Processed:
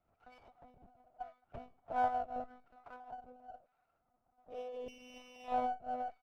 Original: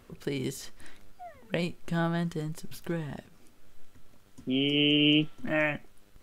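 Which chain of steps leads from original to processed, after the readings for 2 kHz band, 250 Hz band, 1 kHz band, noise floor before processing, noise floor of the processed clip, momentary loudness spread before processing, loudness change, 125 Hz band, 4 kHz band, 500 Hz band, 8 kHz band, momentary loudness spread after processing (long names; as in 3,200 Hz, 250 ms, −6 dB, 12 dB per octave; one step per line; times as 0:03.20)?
−19.0 dB, −24.0 dB, +5.5 dB, −57 dBFS, −81 dBFS, 19 LU, −11.5 dB, −29.5 dB, below −30 dB, −10.5 dB, below −20 dB, 20 LU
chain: spectral tilt −3 dB per octave
on a send: single-tap delay 358 ms −5 dB
on the sum: tape wow and flutter 20 cents
comb filter 1.4 ms, depth 58%
auto-filter band-pass saw down 0.82 Hz 510–1,900 Hz
formant filter a
one-pitch LPC vocoder at 8 kHz 250 Hz
high-shelf EQ 2,700 Hz −10 dB
tuned comb filter 450 Hz, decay 0.43 s, mix 50%
two-band tremolo in antiphase 1.2 Hz, depth 70%, crossover 410 Hz
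windowed peak hold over 5 samples
level +15 dB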